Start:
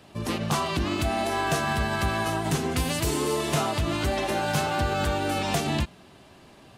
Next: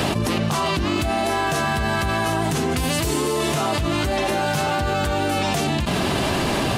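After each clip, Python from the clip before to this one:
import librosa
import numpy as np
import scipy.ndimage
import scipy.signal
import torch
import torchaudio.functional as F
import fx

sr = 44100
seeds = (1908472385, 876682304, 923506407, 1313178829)

y = fx.env_flatten(x, sr, amount_pct=100)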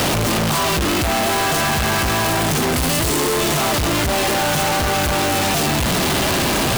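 y = np.sign(x) * np.sqrt(np.mean(np.square(x)))
y = y * 10.0 ** (3.5 / 20.0)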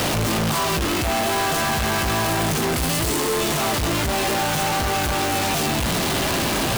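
y = fx.doubler(x, sr, ms=18.0, db=-11)
y = y * 10.0 ** (-4.0 / 20.0)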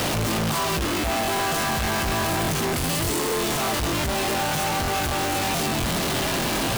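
y = fx.buffer_crackle(x, sr, first_s=0.87, period_s=0.12, block=1024, kind='repeat')
y = y * 10.0 ** (-2.5 / 20.0)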